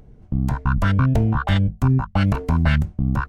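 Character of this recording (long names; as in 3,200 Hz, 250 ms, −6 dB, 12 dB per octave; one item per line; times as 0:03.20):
background noise floor −49 dBFS
spectral slope −7.0 dB per octave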